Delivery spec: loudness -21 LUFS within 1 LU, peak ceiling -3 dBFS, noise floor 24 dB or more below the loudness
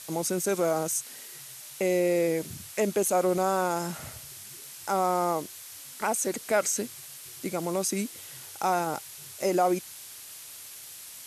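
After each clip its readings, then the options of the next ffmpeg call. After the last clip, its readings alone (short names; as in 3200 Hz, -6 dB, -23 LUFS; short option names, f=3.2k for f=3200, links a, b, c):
noise floor -45 dBFS; noise floor target -52 dBFS; loudness -28.0 LUFS; peak -13.5 dBFS; loudness target -21.0 LUFS
-> -af "afftdn=nr=7:nf=-45"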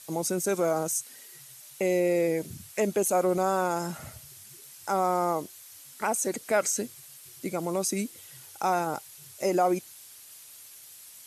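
noise floor -49 dBFS; noise floor target -52 dBFS
-> -af "afftdn=nr=6:nf=-49"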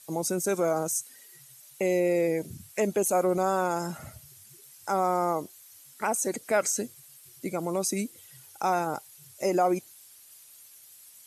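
noise floor -53 dBFS; loudness -28.5 LUFS; peak -13.5 dBFS; loudness target -21.0 LUFS
-> -af "volume=7.5dB"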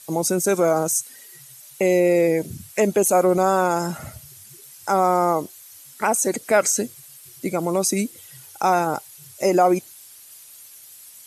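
loudness -21.0 LUFS; peak -6.0 dBFS; noise floor -46 dBFS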